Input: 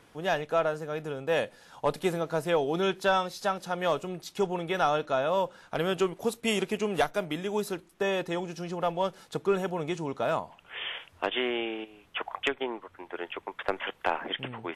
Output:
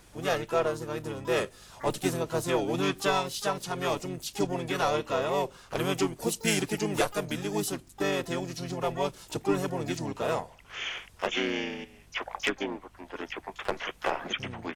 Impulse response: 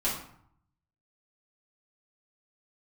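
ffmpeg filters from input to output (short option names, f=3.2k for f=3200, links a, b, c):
-filter_complex "[0:a]bass=f=250:g=3,treble=f=4k:g=11,aeval=exprs='val(0)+0.00141*(sin(2*PI*50*n/s)+sin(2*PI*2*50*n/s)/2+sin(2*PI*3*50*n/s)/3+sin(2*PI*4*50*n/s)/4+sin(2*PI*5*50*n/s)/5)':c=same,asplit=3[a][b][c];[b]asetrate=33038,aresample=44100,atempo=1.33484,volume=-2dB[d];[c]asetrate=88200,aresample=44100,atempo=0.5,volume=-14dB[e];[a][d][e]amix=inputs=3:normalize=0,volume=-3.5dB"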